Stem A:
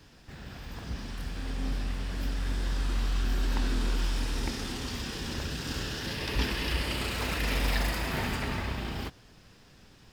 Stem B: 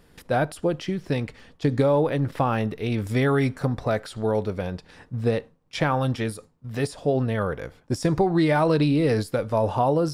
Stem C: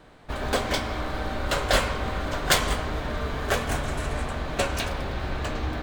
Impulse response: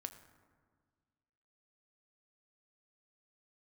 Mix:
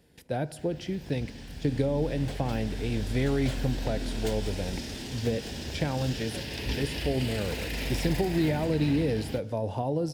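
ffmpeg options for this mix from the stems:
-filter_complex "[0:a]dynaudnorm=f=490:g=5:m=1.41,adelay=300,volume=0.596[s0];[1:a]volume=0.398,asplit=2[s1][s2];[s2]volume=0.708[s3];[2:a]adelay=1750,volume=0.158[s4];[3:a]atrim=start_sample=2205[s5];[s3][s5]afir=irnorm=-1:irlink=0[s6];[s0][s1][s4][s6]amix=inputs=4:normalize=0,highpass=50,equalizer=f=1200:w=2.5:g=-13.5,acrossover=split=390[s7][s8];[s8]acompressor=threshold=0.0316:ratio=6[s9];[s7][s9]amix=inputs=2:normalize=0"

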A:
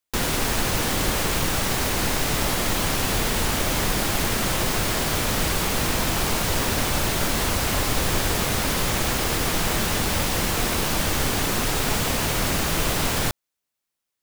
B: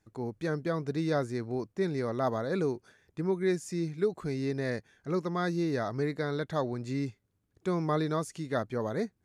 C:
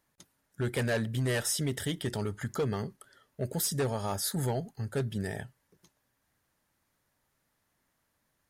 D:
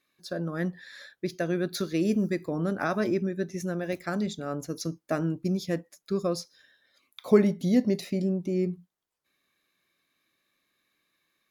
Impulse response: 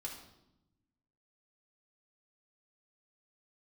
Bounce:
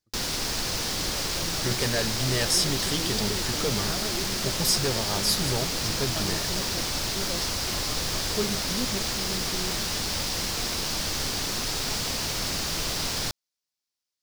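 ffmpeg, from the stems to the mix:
-filter_complex "[0:a]volume=0.355[s0];[1:a]volume=0.168[s1];[2:a]adelay=1050,volume=1.12[s2];[3:a]adelay=1050,volume=0.316[s3];[s0][s1][s2][s3]amix=inputs=4:normalize=0,equalizer=f=5000:w=1.3:g=12"

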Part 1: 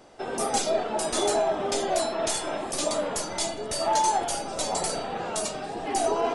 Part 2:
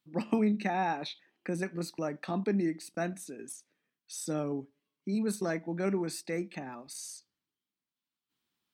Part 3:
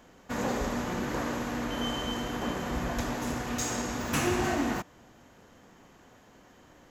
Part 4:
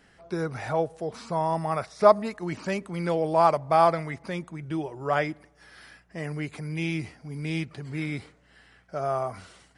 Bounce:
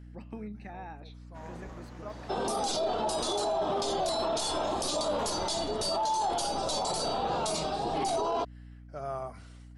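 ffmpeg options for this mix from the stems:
-filter_complex "[0:a]equalizer=f=1000:t=o:w=1:g=6,equalizer=f=2000:t=o:w=1:g=-11,equalizer=f=4000:t=o:w=1:g=9,equalizer=f=8000:t=o:w=1:g=-4,adelay=2100,volume=1.06[s0];[1:a]bass=f=250:g=-1,treble=f=4000:g=-6,aeval=exprs='val(0)+0.00447*(sin(2*PI*60*n/s)+sin(2*PI*2*60*n/s)/2+sin(2*PI*3*60*n/s)/3+sin(2*PI*4*60*n/s)/4+sin(2*PI*5*60*n/s)/5)':c=same,volume=0.211,asplit=2[s1][s2];[2:a]adynamicsmooth=sensitivity=4.5:basefreq=6700,adelay=1050,volume=0.141[s3];[3:a]volume=0.376[s4];[s2]apad=whole_len=430882[s5];[s4][s5]sidechaincompress=threshold=0.00112:ratio=20:attack=12:release=1070[s6];[s0][s1][s3][s6]amix=inputs=4:normalize=0,aeval=exprs='val(0)+0.00398*(sin(2*PI*60*n/s)+sin(2*PI*2*60*n/s)/2+sin(2*PI*3*60*n/s)/3+sin(2*PI*4*60*n/s)/4+sin(2*PI*5*60*n/s)/5)':c=same,alimiter=limit=0.075:level=0:latency=1:release=16"

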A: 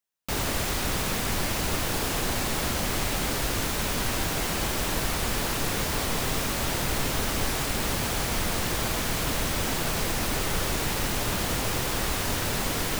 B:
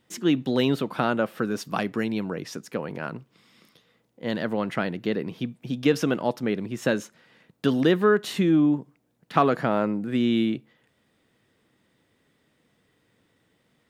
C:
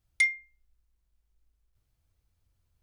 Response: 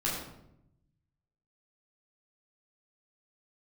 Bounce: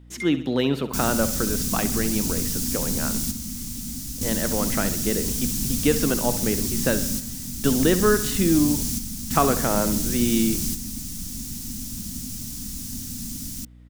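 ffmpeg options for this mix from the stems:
-filter_complex "[0:a]firequalizer=gain_entry='entry(150,0);entry(240,10);entry(400,-26);entry(5700,5)':delay=0.05:min_phase=1,adelay=650,volume=1.06[s0];[1:a]volume=1,asplit=3[s1][s2][s3];[s2]volume=0.224[s4];[2:a]volume=0.299[s5];[s3]apad=whole_len=606247[s6];[s0][s6]sidechaingate=range=0.447:threshold=0.00316:ratio=16:detection=peak[s7];[s4]aecho=0:1:66|132|198|264|330|396|462|528:1|0.52|0.27|0.141|0.0731|0.038|0.0198|0.0103[s8];[s7][s1][s5][s8]amix=inputs=4:normalize=0,aeval=exprs='val(0)+0.00501*(sin(2*PI*60*n/s)+sin(2*PI*2*60*n/s)/2+sin(2*PI*3*60*n/s)/3+sin(2*PI*4*60*n/s)/4+sin(2*PI*5*60*n/s)/5)':c=same"

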